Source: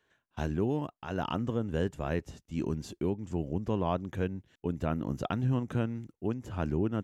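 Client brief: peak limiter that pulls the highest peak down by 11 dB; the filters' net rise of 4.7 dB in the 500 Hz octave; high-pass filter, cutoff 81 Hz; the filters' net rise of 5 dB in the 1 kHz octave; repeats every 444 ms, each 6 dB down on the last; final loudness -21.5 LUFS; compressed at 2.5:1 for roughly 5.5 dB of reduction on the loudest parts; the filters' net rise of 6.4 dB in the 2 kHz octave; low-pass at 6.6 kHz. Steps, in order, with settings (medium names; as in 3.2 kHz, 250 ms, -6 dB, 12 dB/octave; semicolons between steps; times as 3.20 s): high-pass 81 Hz; low-pass 6.6 kHz; peaking EQ 500 Hz +5 dB; peaking EQ 1 kHz +3 dB; peaking EQ 2 kHz +7.5 dB; compression 2.5:1, threshold -30 dBFS; peak limiter -25.5 dBFS; feedback delay 444 ms, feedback 50%, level -6 dB; trim +16 dB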